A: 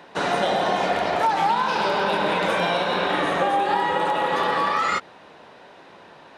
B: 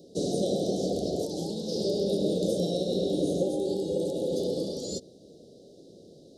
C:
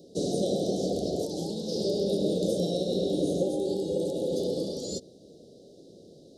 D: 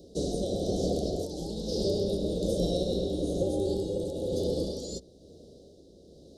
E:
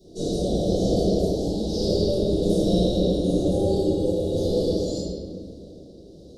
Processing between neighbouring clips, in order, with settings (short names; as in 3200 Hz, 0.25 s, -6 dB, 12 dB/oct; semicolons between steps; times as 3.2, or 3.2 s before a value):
inverse Chebyshev band-stop 930–2500 Hz, stop band 50 dB; gain +1.5 dB
nothing audible
octaver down 2 oct, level -4 dB; tremolo 1.1 Hz, depth 38%
reverb RT60 1.8 s, pre-delay 3 ms, DRR -14.5 dB; gain -9 dB